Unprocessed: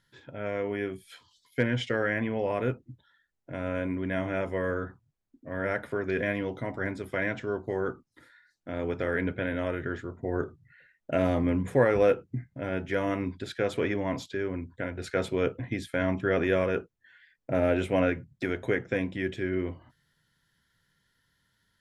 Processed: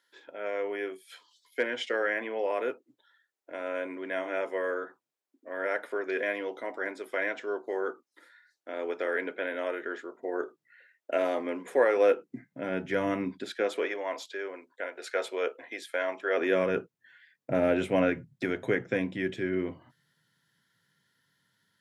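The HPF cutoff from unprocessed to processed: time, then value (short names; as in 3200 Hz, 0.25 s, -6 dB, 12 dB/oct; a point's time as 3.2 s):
HPF 24 dB/oct
11.94 s 350 Hz
13.06 s 110 Hz
13.94 s 440 Hz
16.3 s 440 Hz
16.74 s 120 Hz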